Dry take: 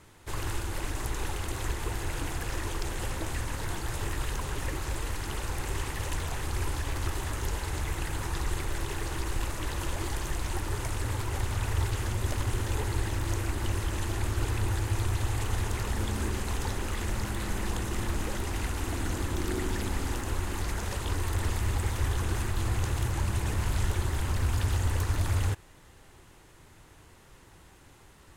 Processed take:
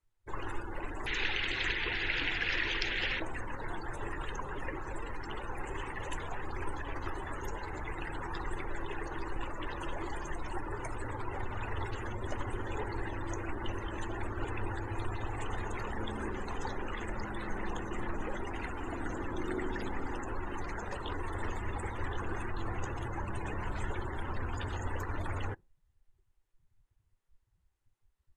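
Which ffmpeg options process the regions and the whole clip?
ffmpeg -i in.wav -filter_complex "[0:a]asettb=1/sr,asplit=3[link_01][link_02][link_03];[link_01]atrim=end=1.064[link_04];[link_02]atrim=start=1.06:end=3.2,asetpts=PTS-STARTPTS,afade=type=in:duration=0.004:curve=qsin,afade=type=out:start_time=2.136:duration=0.004:curve=qsin,lowpass=4300,highshelf=frequency=1500:width_type=q:width=1.5:gain=9.5[link_05];[link_03]atrim=start=3.196[link_06];[link_04][link_05]acrossfade=duration=0.004:curve1=hsin:curve2=qsin[link_07];[link_07][link_06]acrossfade=duration=0.004:curve1=qsin:curve2=hsin,afftdn=noise_reduction=33:noise_floor=-39,equalizer=frequency=70:width_type=o:width=3:gain=-13.5,volume=1dB" out.wav

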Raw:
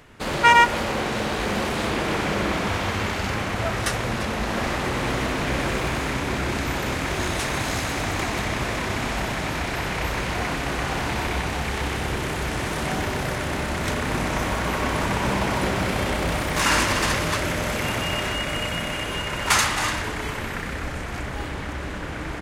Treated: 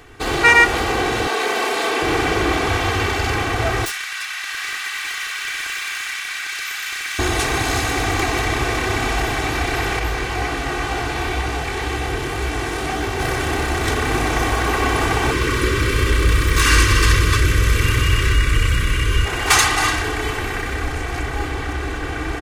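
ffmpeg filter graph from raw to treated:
ffmpeg -i in.wav -filter_complex "[0:a]asettb=1/sr,asplit=3[link_01][link_02][link_03];[link_01]atrim=end=1.274[link_04];[link_02]atrim=start=1.27:end=2.02,asetpts=PTS-STARTPTS,afade=type=in:duration=0.004:curve=qsin,afade=type=out:start_time=0.746:duration=0.004:curve=qsin,highpass=380,aecho=1:1:4.5:0.32,atrim=end_sample=33075[link_05];[link_03]atrim=start=2.016[link_06];[link_04][link_05]acrossfade=duration=0.004:curve1=hsin:curve2=qsin[link_07];[link_07][link_06]acrossfade=duration=0.004:curve1=qsin:curve2=hsin,asettb=1/sr,asplit=3[link_08][link_09][link_10];[link_08]atrim=end=3.854[link_11];[link_09]atrim=start=3.85:end=7.19,asetpts=PTS-STARTPTS,afade=type=in:duration=0.004:curve=qsin,afade=type=out:start_time=3.336:duration=0.004:curve=qsin,highpass=frequency=1500:width=0.5412,highpass=frequency=1500:width=1.3066,aeval=exprs='0.0531*(abs(mod(val(0)/0.0531+3,4)-2)-1)':channel_layout=same[link_12];[link_10]atrim=start=7.186[link_13];[link_11][link_12]acrossfade=duration=0.004:curve1=hsin:curve2=qsin[link_14];[link_14][link_13]acrossfade=duration=0.004:curve1=qsin:curve2=hsin,asettb=1/sr,asplit=3[link_15][link_16][link_17];[link_15]atrim=end=9.994[link_18];[link_16]atrim=start=9.99:end=13.2,asetpts=PTS-STARTPTS,afade=type=in:duration=0.004:curve=qsin,afade=type=out:start_time=3.206:duration=0.004:curve=qsin,highshelf=frequency=11000:gain=-3.5,flanger=delay=16.5:depth=6.6:speed=2[link_19];[link_17]atrim=start=13.196[link_20];[link_18][link_19]acrossfade=duration=0.004:curve1=hsin:curve2=qsin[link_21];[link_21][link_20]acrossfade=duration=0.004:curve1=qsin:curve2=hsin,asettb=1/sr,asplit=3[link_22][link_23][link_24];[link_22]atrim=end=15.314[link_25];[link_23]atrim=start=15.31:end=19.25,asetpts=PTS-STARTPTS,afade=type=in:duration=0.004:curve=qsin,afade=type=out:start_time=3.936:duration=0.004:curve=qsin,asuperstop=centerf=750:order=4:qfactor=1.6,asubboost=boost=5.5:cutoff=140[link_26];[link_24]atrim=start=19.246[link_27];[link_25][link_26]acrossfade=duration=0.004:curve1=hsin:curve2=qsin[link_28];[link_28][link_27]acrossfade=duration=0.004:curve1=qsin:curve2=hsin,aecho=1:1:2.6:0.77,acontrast=25,volume=-1dB" out.wav

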